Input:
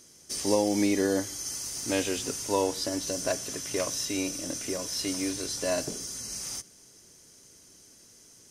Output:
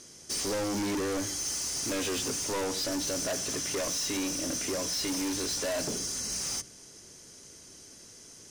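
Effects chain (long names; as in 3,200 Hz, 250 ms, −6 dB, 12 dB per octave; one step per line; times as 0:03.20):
Bessel low-pass filter 8,900 Hz, order 2
mains-hum notches 60/120/180/240/300 Hz
in parallel at −1 dB: brickwall limiter −22.5 dBFS, peak gain reduction 11 dB
on the sum: gain into a clipping stage and back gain 29 dB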